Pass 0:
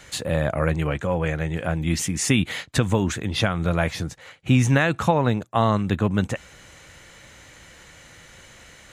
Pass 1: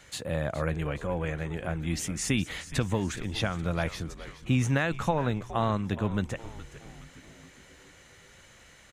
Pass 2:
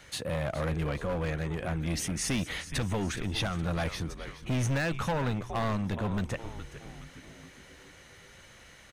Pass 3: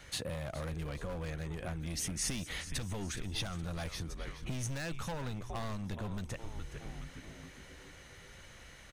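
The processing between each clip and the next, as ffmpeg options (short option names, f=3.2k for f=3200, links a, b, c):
-filter_complex "[0:a]asplit=6[a][b][c][d][e][f];[b]adelay=418,afreqshift=-120,volume=-14.5dB[g];[c]adelay=836,afreqshift=-240,volume=-20.3dB[h];[d]adelay=1254,afreqshift=-360,volume=-26.2dB[i];[e]adelay=1672,afreqshift=-480,volume=-32dB[j];[f]adelay=2090,afreqshift=-600,volume=-37.9dB[k];[a][g][h][i][j][k]amix=inputs=6:normalize=0,volume=-7.5dB"
-filter_complex "[0:a]bandreject=f=7.3k:w=7,acrossover=split=5300[a][b];[a]volume=27.5dB,asoftclip=hard,volume=-27.5dB[c];[c][b]amix=inputs=2:normalize=0,volume=1.5dB"
-filter_complex "[0:a]lowshelf=f=67:g=9,acrossover=split=4000[a][b];[a]acompressor=threshold=-35dB:ratio=6[c];[c][b]amix=inputs=2:normalize=0,volume=-1.5dB"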